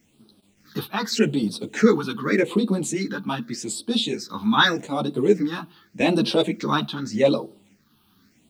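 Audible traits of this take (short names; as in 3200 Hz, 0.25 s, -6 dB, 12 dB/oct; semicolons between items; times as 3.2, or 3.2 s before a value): a quantiser's noise floor 10-bit, dither none; phasing stages 6, 0.84 Hz, lowest notch 520–2000 Hz; random-step tremolo; a shimmering, thickened sound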